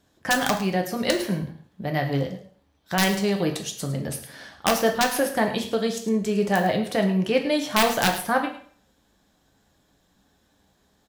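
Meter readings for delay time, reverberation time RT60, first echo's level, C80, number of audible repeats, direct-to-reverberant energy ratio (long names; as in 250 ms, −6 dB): 106 ms, 0.50 s, −14.0 dB, 11.5 dB, 1, 2.5 dB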